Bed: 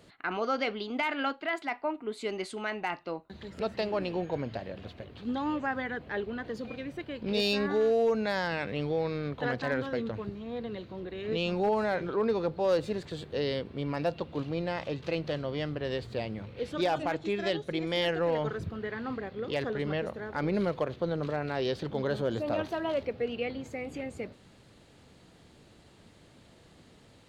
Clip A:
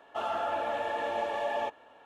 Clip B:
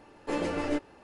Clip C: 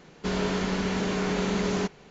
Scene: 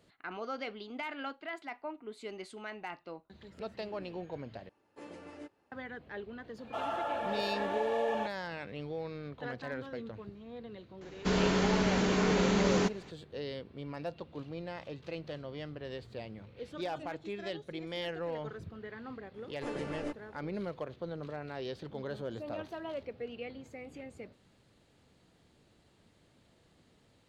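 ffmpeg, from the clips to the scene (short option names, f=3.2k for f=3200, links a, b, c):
-filter_complex "[2:a]asplit=2[a][b];[0:a]volume=-9dB[c];[a]highpass=66[d];[c]asplit=2[e][f];[e]atrim=end=4.694[g];[d]atrim=end=1.03,asetpts=PTS-STARTPTS,volume=-18dB[h];[f]atrim=start=5.716[i];[1:a]atrim=end=2.05,asetpts=PTS-STARTPTS,volume=-3.5dB,afade=t=in:d=0.004:c=hsin,afade=t=out:st=2.046:d=0.004:c=hsin,adelay=290178S[j];[3:a]atrim=end=2.1,asetpts=PTS-STARTPTS,volume=-1dB,afade=t=in:d=0.004:c=hsin,afade=t=out:st=2.096:d=0.004:c=hsin,adelay=11010[k];[b]atrim=end=1.03,asetpts=PTS-STARTPTS,volume=-9.5dB,afade=t=in:d=0.004:c=hsin,afade=t=out:st=1.026:d=0.004:c=hsin,adelay=19340[l];[g][h]acrossfade=d=0.004:c1=hsin:c2=hsin[m];[m][i]acrossfade=d=0.004:c1=hsin:c2=hsin[n];[n][j][k][l]amix=inputs=4:normalize=0"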